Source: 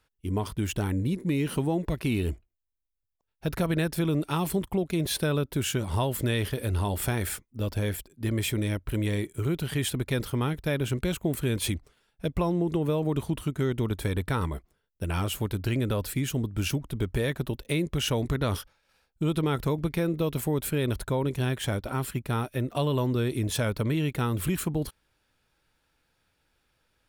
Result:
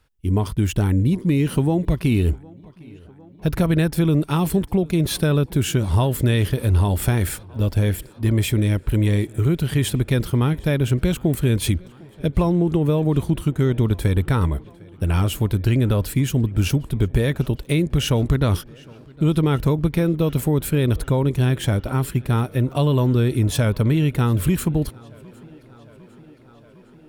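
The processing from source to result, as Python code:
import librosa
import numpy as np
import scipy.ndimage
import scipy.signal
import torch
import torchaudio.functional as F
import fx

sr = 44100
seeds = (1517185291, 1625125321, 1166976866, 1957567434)

y = fx.low_shelf(x, sr, hz=240.0, db=8.0)
y = fx.echo_tape(y, sr, ms=756, feedback_pct=86, wet_db=-22.0, lp_hz=4800.0, drive_db=14.0, wow_cents=23)
y = y * 10.0 ** (4.0 / 20.0)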